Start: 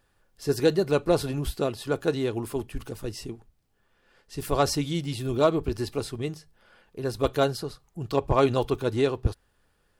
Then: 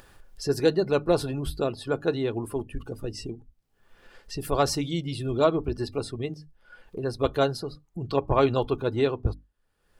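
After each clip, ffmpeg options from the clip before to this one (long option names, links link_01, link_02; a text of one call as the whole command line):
ffmpeg -i in.wav -af "bandreject=frequency=50:width_type=h:width=6,bandreject=frequency=100:width_type=h:width=6,bandreject=frequency=150:width_type=h:width=6,bandreject=frequency=200:width_type=h:width=6,bandreject=frequency=250:width_type=h:width=6,bandreject=frequency=300:width_type=h:width=6,afftdn=noise_reduction=18:noise_floor=-45,acompressor=mode=upward:threshold=-29dB:ratio=2.5" out.wav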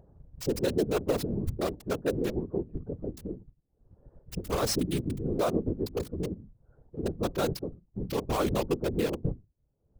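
ffmpeg -i in.wav -filter_complex "[0:a]acrossover=split=690[link_01][link_02];[link_02]acrusher=bits=4:mix=0:aa=0.000001[link_03];[link_01][link_03]amix=inputs=2:normalize=0,alimiter=limit=-18dB:level=0:latency=1:release=14,afftfilt=real='hypot(re,im)*cos(2*PI*random(0))':imag='hypot(re,im)*sin(2*PI*random(1))':win_size=512:overlap=0.75,volume=5.5dB" out.wav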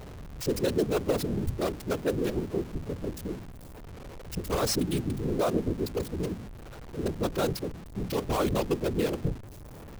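ffmpeg -i in.wav -af "aeval=exprs='val(0)+0.5*0.0119*sgn(val(0))':channel_layout=same" out.wav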